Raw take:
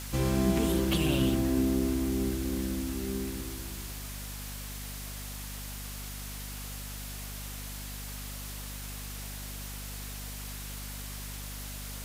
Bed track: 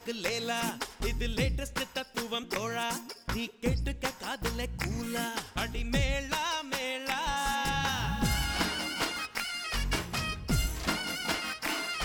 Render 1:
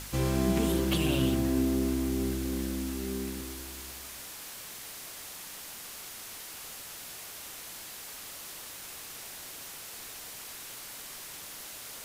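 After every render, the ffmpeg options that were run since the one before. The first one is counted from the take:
-af "bandreject=f=50:t=h:w=4,bandreject=f=100:t=h:w=4,bandreject=f=150:t=h:w=4,bandreject=f=200:t=h:w=4,bandreject=f=250:t=h:w=4"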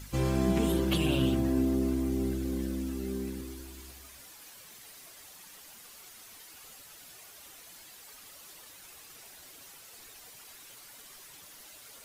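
-af "afftdn=nr=10:nf=-44"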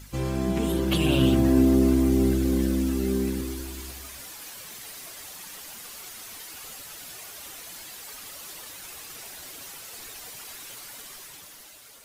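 -af "dynaudnorm=f=250:g=9:m=9.5dB"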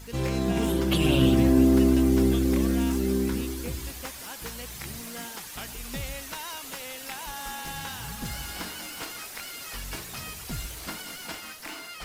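-filter_complex "[1:a]volume=-7dB[a];[0:a][a]amix=inputs=2:normalize=0"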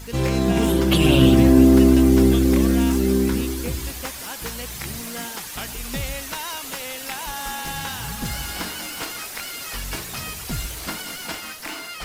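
-af "volume=6.5dB"

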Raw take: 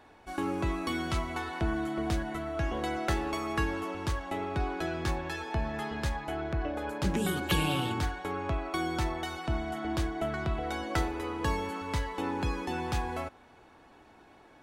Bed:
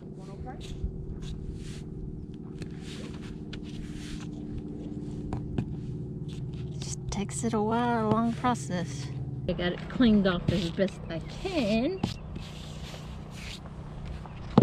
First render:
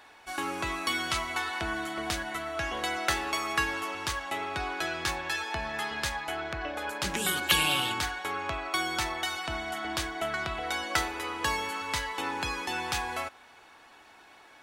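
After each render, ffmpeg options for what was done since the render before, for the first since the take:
-af "tiltshelf=f=670:g=-9.5"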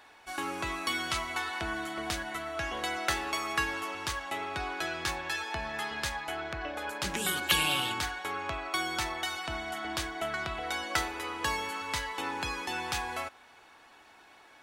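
-af "volume=-2dB"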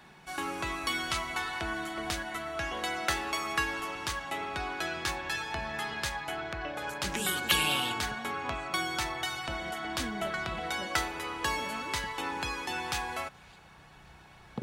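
-filter_complex "[1:a]volume=-18.5dB[a];[0:a][a]amix=inputs=2:normalize=0"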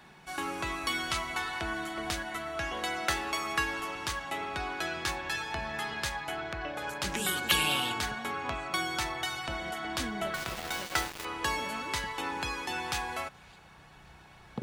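-filter_complex "[0:a]asettb=1/sr,asplit=3[a][b][c];[a]atrim=end=10.344[d];[b]atrim=start=10.34:end=11.25,asetpts=PTS-STARTPTS,afade=t=in:d=0.004:c=qsin,afade=t=out:st=0.906:d=0.004:c=qsin,aeval=exprs='val(0)*gte(abs(val(0)),0.0224)':c=same[e];[c]atrim=start=11.246[f];[d][e]acrossfade=d=0.004:c1=hsin:c2=qsin[g];[g][f]acrossfade=d=0.004:c1=qsin:c2=hsin"

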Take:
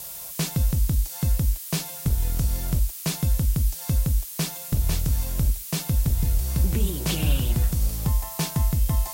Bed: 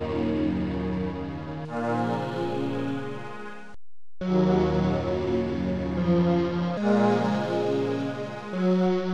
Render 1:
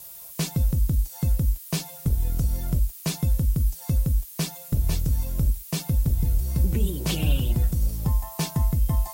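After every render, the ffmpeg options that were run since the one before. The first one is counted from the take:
-af "afftdn=nr=9:nf=-37"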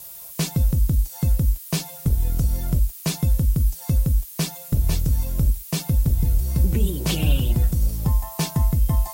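-af "volume=3dB"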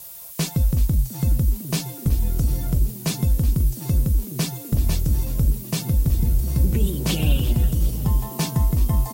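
-filter_complex "[0:a]asplit=6[a][b][c][d][e][f];[b]adelay=375,afreqshift=79,volume=-16dB[g];[c]adelay=750,afreqshift=158,volume=-21.4dB[h];[d]adelay=1125,afreqshift=237,volume=-26.7dB[i];[e]adelay=1500,afreqshift=316,volume=-32.1dB[j];[f]adelay=1875,afreqshift=395,volume=-37.4dB[k];[a][g][h][i][j][k]amix=inputs=6:normalize=0"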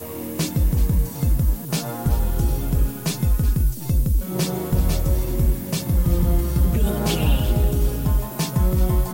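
-filter_complex "[1:a]volume=-5dB[a];[0:a][a]amix=inputs=2:normalize=0"

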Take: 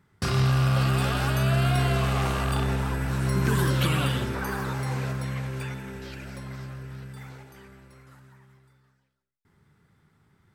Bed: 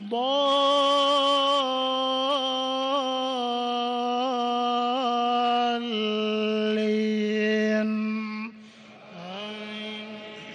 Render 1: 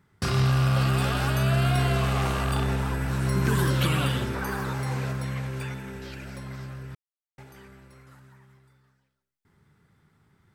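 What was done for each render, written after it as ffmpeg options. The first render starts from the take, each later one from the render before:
-filter_complex "[0:a]asplit=3[a][b][c];[a]atrim=end=6.95,asetpts=PTS-STARTPTS,afade=t=out:st=6.946:d=0.004:c=hsin[d];[b]atrim=start=6.95:end=7.38,asetpts=PTS-STARTPTS,volume=0[e];[c]atrim=start=7.38,asetpts=PTS-STARTPTS,afade=t=in:d=0.004:c=hsin[f];[d][e][f]concat=n=3:v=0:a=1"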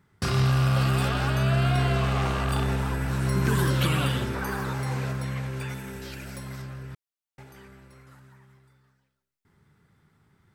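-filter_complex "[0:a]asettb=1/sr,asplit=3[a][b][c];[a]atrim=end=1.084[d];[b]atrim=start=1.08:end=2.49,asetpts=PTS-STARTPTS,afade=t=in:d=0.004:c=qsin,afade=t=out:st=1.406:d=0.004:c=qsin,equalizer=f=13k:w=0.56:g=-8[e];[c]atrim=start=2.486[f];[d][e]acrossfade=d=0.004:c1=hsin:c2=qsin[g];[g][f]acrossfade=d=0.004:c1=qsin:c2=hsin,asettb=1/sr,asplit=3[h][i][j];[h]atrim=end=5.694[k];[i]atrim=start=5.69:end=6.62,asetpts=PTS-STARTPTS,afade=t=in:d=0.004:c=qsin,afade=t=out:st=0.926:d=0.004:c=qsin,highshelf=f=6.8k:g=11[l];[j]atrim=start=6.616[m];[k][l]acrossfade=d=0.004:c1=hsin:c2=qsin[n];[n][m]acrossfade=d=0.004:c1=qsin:c2=hsin"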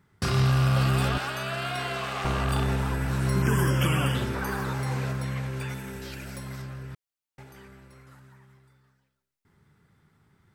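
-filter_complex "[0:a]asettb=1/sr,asplit=3[a][b][c];[a]atrim=end=1.184[d];[b]atrim=start=1.18:end=2.25,asetpts=PTS-STARTPTS,afade=t=in:d=0.004:c=qsin,afade=t=out:st=1.066:d=0.004:c=qsin,highpass=f=730:p=1[e];[c]atrim=start=2.246[f];[d][e]acrossfade=d=0.004:c1=hsin:c2=qsin[g];[g][f]acrossfade=d=0.004:c1=qsin:c2=hsin,asettb=1/sr,asplit=3[h][i][j];[h]atrim=end=3.424[k];[i]atrim=start=3.42:end=4.15,asetpts=PTS-STARTPTS,afade=t=in:d=0.004:c=qsin,afade=t=out:st=0.726:d=0.004:c=qsin,asuperstop=centerf=4000:order=8:qfactor=2.6[l];[j]atrim=start=4.146[m];[k][l]acrossfade=d=0.004:c1=hsin:c2=qsin[n];[n][m]acrossfade=d=0.004:c1=qsin:c2=hsin"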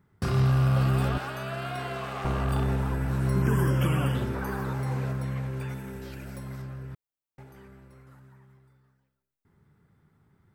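-af "equalizer=f=5.1k:w=0.31:g=-9"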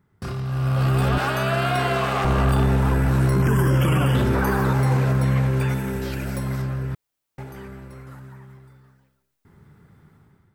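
-af "alimiter=limit=-24dB:level=0:latency=1:release=11,dynaudnorm=f=460:g=3:m=12dB"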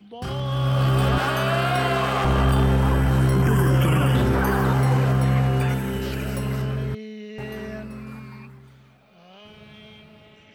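-filter_complex "[1:a]volume=-11.5dB[a];[0:a][a]amix=inputs=2:normalize=0"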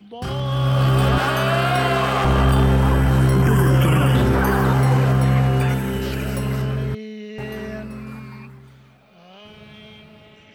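-af "volume=3dB"

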